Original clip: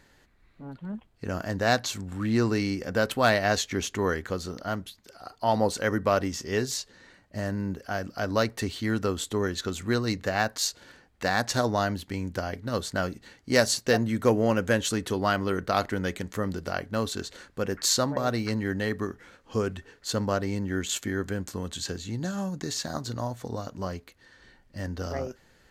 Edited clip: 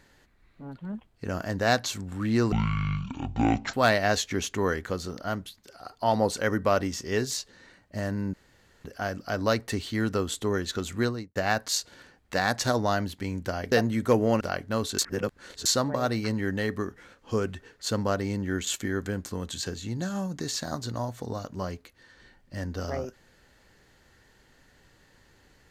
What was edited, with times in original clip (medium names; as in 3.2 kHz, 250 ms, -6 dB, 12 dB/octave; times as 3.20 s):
2.52–3.14 s: speed 51%
7.74 s: insert room tone 0.51 s
9.89–10.25 s: studio fade out
12.61–13.88 s: delete
14.57–16.63 s: delete
17.21–17.88 s: reverse